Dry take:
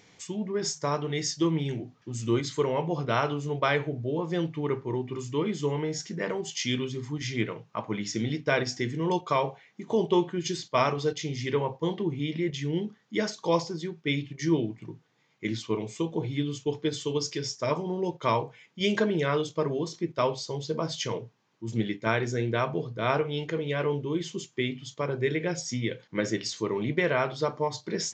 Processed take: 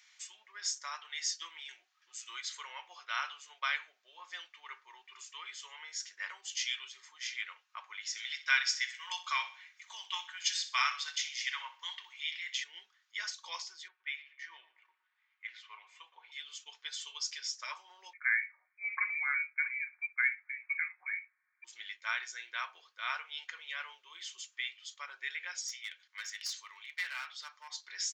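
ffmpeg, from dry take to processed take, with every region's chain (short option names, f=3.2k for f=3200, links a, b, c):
-filter_complex "[0:a]asettb=1/sr,asplit=3[a][b][c];[a]atrim=end=8.174[d];[b]atrim=start=8.17:end=12.64,asetpts=PTS-STARTPTS,afade=t=in:d=0.004:c=qsin,afade=t=out:st=4.466:d=0.004:c=qsin,highpass=1.1k,acontrast=46,aecho=1:1:63|126|189|252:0.211|0.0803|0.0305|0.0116,atrim=end_sample=197127[e];[c]atrim=start=12.636[f];[d][e]acrossfade=d=0.004:c1=hsin:c2=qsin[g];[g][f]acrossfade=d=0.004:c1=qsin:c2=hsin,asettb=1/sr,asplit=3[h][i][j];[h]atrim=end=13.884[k];[i]atrim=start=13.88:end=16.32,asetpts=PTS-STARTPTS,afade=t=in:d=0.004:c=qsin,afade=t=out:st=2.436:d=0.004:c=qsin,acrossover=split=430 2800:gain=0.0891 1 0.0891[l][m][n];[l][m][n]amix=inputs=3:normalize=0,asplit=2[o][p];[p]adelay=118,lowpass=f=1.9k:p=1,volume=-14dB,asplit=2[q][r];[r]adelay=118,lowpass=f=1.9k:p=1,volume=0.4,asplit=2[s][t];[t]adelay=118,lowpass=f=1.9k:p=1,volume=0.4,asplit=2[u][v];[v]adelay=118,lowpass=f=1.9k:p=1,volume=0.4[w];[o][q][s][u][w]amix=inputs=5:normalize=0,atrim=end_sample=107604[x];[j]atrim=start=16.316[y];[k][x]acrossfade=d=0.004:c1=hsin:c2=qsin[z];[z][y]acrossfade=d=0.004:c1=qsin:c2=hsin,asettb=1/sr,asplit=3[aa][ab][ac];[aa]atrim=end=18.134[ad];[ab]atrim=start=18.13:end=21.64,asetpts=PTS-STARTPTS,afade=t=in:d=0.004:c=qsin,afade=t=out:st=3.506:d=0.004:c=qsin,highpass=f=400:w=0.5412,highpass=f=400:w=1.3066,lowpass=f=2.3k:t=q:w=0.5098,lowpass=f=2.3k:t=q:w=0.6013,lowpass=f=2.3k:t=q:w=0.9,lowpass=f=2.3k:t=q:w=2.563,afreqshift=-2700[ae];[ac]atrim=start=21.636[af];[ad][ae]acrossfade=d=0.004:c1=hsin:c2=qsin[ag];[ag][af]acrossfade=d=0.004:c1=qsin:c2=hsin,asettb=1/sr,asplit=3[ah][ai][aj];[ah]atrim=end=25.684[ak];[ai]atrim=start=25.68:end=27.7,asetpts=PTS-STARTPTS,afade=t=in:d=0.004:c=qsin,afade=t=out:st=2.016:d=0.004:c=qsin,highpass=f=1.5k:p=1,aeval=exprs='clip(val(0),-1,0.0266)':c=same[al];[aj]atrim=start=27.696[am];[ak][al]acrossfade=d=0.004:c1=hsin:c2=qsin[an];[an][am]acrossfade=d=0.004:c1=qsin:c2=hsin,highpass=f=1.3k:w=0.5412,highpass=f=1.3k:w=1.3066,aecho=1:1:5.5:0.34,volume=-3.5dB"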